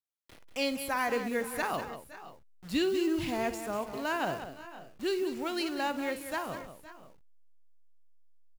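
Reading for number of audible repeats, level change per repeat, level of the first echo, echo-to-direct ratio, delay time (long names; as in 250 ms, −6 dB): 3, repeats not evenly spaced, −13.5 dB, −8.0 dB, 54 ms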